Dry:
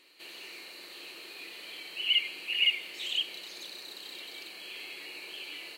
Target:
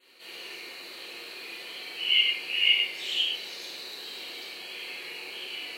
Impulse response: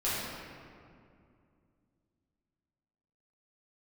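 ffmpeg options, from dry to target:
-filter_complex "[0:a]adynamicequalizer=threshold=0.00178:dfrequency=5300:dqfactor=5.4:tfrequency=5300:tqfactor=5.4:attack=5:release=100:ratio=0.375:range=2:mode=boostabove:tftype=bell[link_01];[1:a]atrim=start_sample=2205,afade=type=out:start_time=0.23:duration=0.01,atrim=end_sample=10584,asetrate=52920,aresample=44100[link_02];[link_01][link_02]afir=irnorm=-1:irlink=0,volume=-1dB"

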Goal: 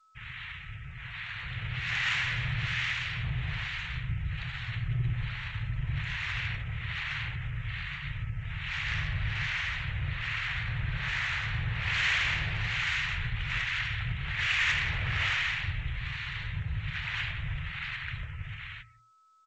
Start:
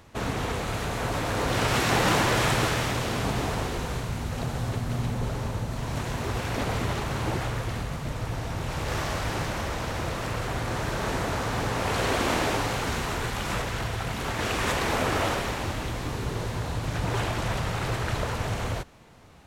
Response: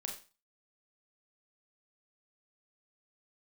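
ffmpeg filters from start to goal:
-filter_complex "[0:a]dynaudnorm=framelen=410:gausssize=13:maxgain=9dB,aeval=exprs='sgn(val(0))*max(abs(val(0))-0.01,0)':channel_layout=same,bandreject=frequency=57.36:width_type=h:width=4,bandreject=frequency=114.72:width_type=h:width=4,bandreject=frequency=172.08:width_type=h:width=4,bandreject=frequency=229.44:width_type=h:width=4,bandreject=frequency=286.8:width_type=h:width=4,bandreject=frequency=344.16:width_type=h:width=4,bandreject=frequency=401.52:width_type=h:width=4,bandreject=frequency=458.88:width_type=h:width=4,bandreject=frequency=516.24:width_type=h:width=4,bandreject=frequency=573.6:width_type=h:width=4,bandreject=frequency=630.96:width_type=h:width=4,bandreject=frequency=688.32:width_type=h:width=4,acrossover=split=690[link_01][link_02];[link_01]aeval=exprs='val(0)*(1-0.7/2+0.7/2*cos(2*PI*1.2*n/s))':channel_layout=same[link_03];[link_02]aeval=exprs='val(0)*(1-0.7/2-0.7/2*cos(2*PI*1.2*n/s))':channel_layout=same[link_04];[link_03][link_04]amix=inputs=2:normalize=0,asplit=2[link_05][link_06];[link_06]adelay=180.8,volume=-16dB,highshelf=frequency=4000:gain=-4.07[link_07];[link_05][link_07]amix=inputs=2:normalize=0,asplit=3[link_08][link_09][link_10];[link_08]afade=type=out:start_time=6.54:duration=0.02[link_11];[link_09]acompressor=threshold=-24dB:ratio=5,afade=type=in:start_time=6.54:duration=0.02,afade=type=out:start_time=8.71:duration=0.02[link_12];[link_10]afade=type=in:start_time=8.71:duration=0.02[link_13];[link_11][link_12][link_13]amix=inputs=3:normalize=0,aeval=exprs='val(0)+0.00355*sin(2*PI*1300*n/s)':channel_layout=same,firequalizer=gain_entry='entry(150,0);entry(220,-28);entry(1900,6);entry(2700,4);entry(5000,-10)':delay=0.05:min_phase=1,afftdn=noise_reduction=28:noise_floor=-48,asoftclip=type=tanh:threshold=-14dB,highshelf=frequency=2200:gain=2.5,volume=-5.5dB" -ar 16000 -c:a g722

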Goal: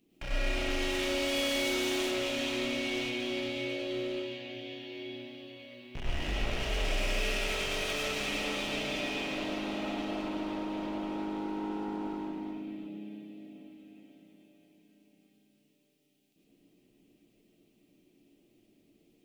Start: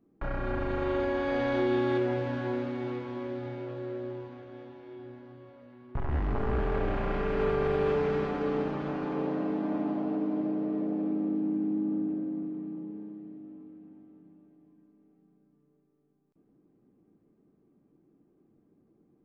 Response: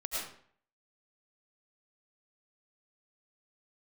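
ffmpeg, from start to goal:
-filter_complex "[0:a]highshelf=frequency=1900:width_type=q:width=3:gain=13.5,bandreject=frequency=50:width_type=h:width=6,bandreject=frequency=100:width_type=h:width=6,bandreject=frequency=150:width_type=h:width=6,bandreject=frequency=200:width_type=h:width=6,volume=32.5dB,asoftclip=hard,volume=-32.5dB[link_01];[1:a]atrim=start_sample=2205,afade=type=out:start_time=0.19:duration=0.01,atrim=end_sample=8820[link_02];[link_01][link_02]afir=irnorm=-1:irlink=0"

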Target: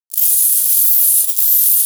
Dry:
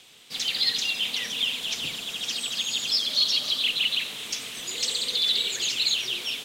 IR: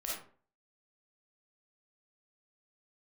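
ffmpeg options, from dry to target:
-filter_complex "[0:a]asetrate=153468,aresample=44100,dynaudnorm=framelen=150:gausssize=3:maxgain=11dB,acrusher=bits=2:mix=0:aa=0.5,aexciter=amount=4:drive=6.5:freq=2900,highshelf=frequency=3200:gain=9.5[link_01];[1:a]atrim=start_sample=2205[link_02];[link_01][link_02]afir=irnorm=-1:irlink=0,alimiter=level_in=-9.5dB:limit=-1dB:release=50:level=0:latency=1,volume=-1dB"

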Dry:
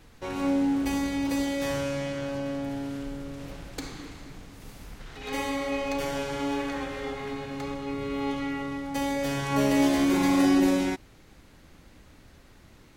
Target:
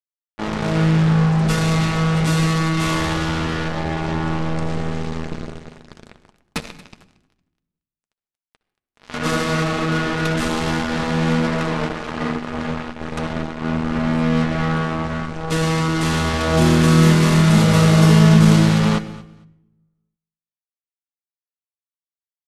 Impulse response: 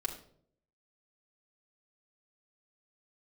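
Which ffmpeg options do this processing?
-filter_complex "[0:a]lowshelf=frequency=82:gain=-4.5,acrusher=bits=4:mix=0:aa=0.5,aecho=1:1:132|264:0.106|0.018,asplit=2[link_01][link_02];[1:a]atrim=start_sample=2205[link_03];[link_02][link_03]afir=irnorm=-1:irlink=0,volume=-5dB[link_04];[link_01][link_04]amix=inputs=2:normalize=0,asetrate=25442,aresample=44100,volume=6dB"

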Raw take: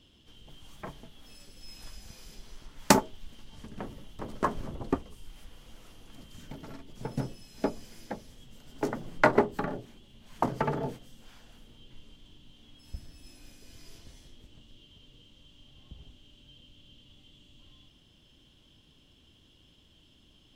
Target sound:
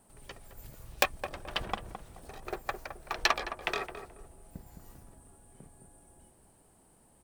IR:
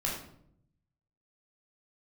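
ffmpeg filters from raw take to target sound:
-filter_complex "[0:a]asetrate=125244,aresample=44100,asplit=2[link_01][link_02];[link_02]adelay=214,lowpass=frequency=960:poles=1,volume=-7dB,asplit=2[link_03][link_04];[link_04]adelay=214,lowpass=frequency=960:poles=1,volume=0.33,asplit=2[link_05][link_06];[link_06]adelay=214,lowpass=frequency=960:poles=1,volume=0.33,asplit=2[link_07][link_08];[link_08]adelay=214,lowpass=frequency=960:poles=1,volume=0.33[link_09];[link_01][link_03][link_05][link_07][link_09]amix=inputs=5:normalize=0,volume=-3dB"

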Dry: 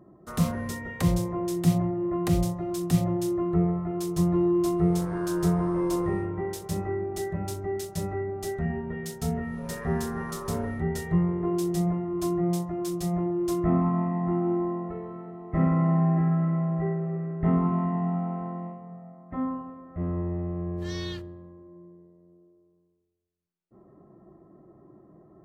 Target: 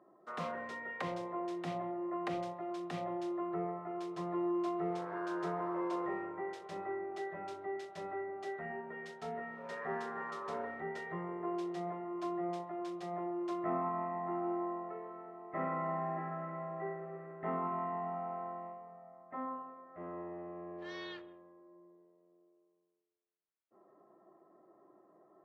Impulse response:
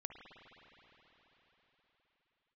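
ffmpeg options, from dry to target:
-filter_complex "[0:a]highpass=550,lowpass=2800,asplit=2[link_01][link_02];[1:a]atrim=start_sample=2205,afade=type=out:start_time=0.25:duration=0.01,atrim=end_sample=11466,lowpass=3900[link_03];[link_02][link_03]afir=irnorm=-1:irlink=0,volume=-4.5dB[link_04];[link_01][link_04]amix=inputs=2:normalize=0,volume=-5dB"

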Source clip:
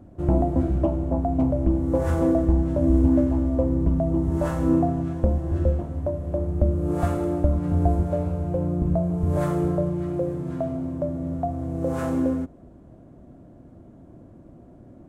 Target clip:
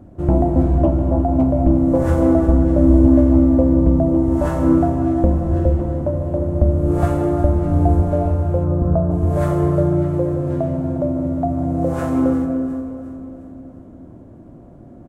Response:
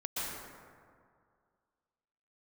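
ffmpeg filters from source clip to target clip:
-filter_complex "[0:a]asettb=1/sr,asplit=3[link_01][link_02][link_03];[link_01]atrim=end=8.644[link_04];[link_02]atrim=start=8.64:end=9.11,asetpts=PTS-STARTPTS,afade=type=in:duration=0.004:curve=qsin,afade=type=out:start_time=0.466:duration=0.004:curve=qsin,highshelf=frequency=1800:width_type=q:width=3:gain=-8.5[link_05];[link_03]atrim=start=9.106[link_06];[link_04][link_05]acrossfade=duration=0.004:curve1=hsin:curve2=qsin[link_07];[link_07][link_06]acrossfade=duration=0.004:curve1=qsin:curve2=hsin,aecho=1:1:355|710|1065|1420|1775:0.224|0.107|0.0516|0.0248|0.0119,asplit=2[link_08][link_09];[1:a]atrim=start_sample=2205,asetrate=37926,aresample=44100,lowpass=2600[link_10];[link_09][link_10]afir=irnorm=-1:irlink=0,volume=-9.5dB[link_11];[link_08][link_11]amix=inputs=2:normalize=0,volume=3dB"

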